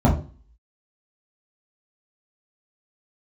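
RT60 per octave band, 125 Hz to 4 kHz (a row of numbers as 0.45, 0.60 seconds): 0.40, 0.45, 0.40, 0.35, 0.35, 0.40 seconds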